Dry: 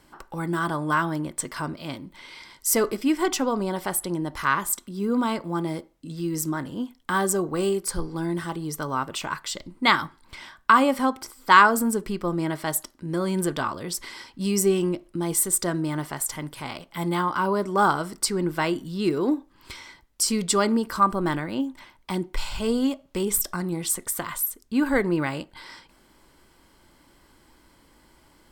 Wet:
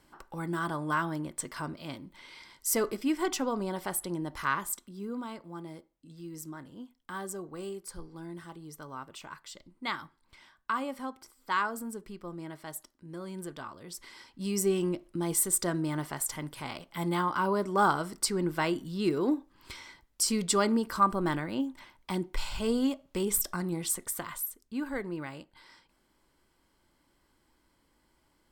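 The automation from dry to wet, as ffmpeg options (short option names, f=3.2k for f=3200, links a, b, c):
-af "volume=4dB,afade=t=out:st=4.45:d=0.79:silence=0.375837,afade=t=in:st=13.77:d=1.28:silence=0.298538,afade=t=out:st=23.74:d=1.16:silence=0.375837"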